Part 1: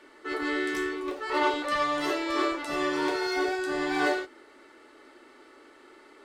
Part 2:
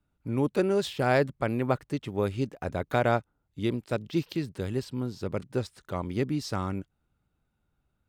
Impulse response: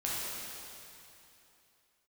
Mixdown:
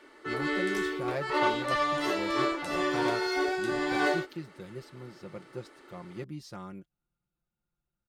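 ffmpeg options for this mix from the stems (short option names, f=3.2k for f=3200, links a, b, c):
-filter_complex "[0:a]volume=-1dB[a];[1:a]aecho=1:1:5.7:0.73,volume=-13dB[b];[a][b]amix=inputs=2:normalize=0,bandreject=f=7.7k:w=26"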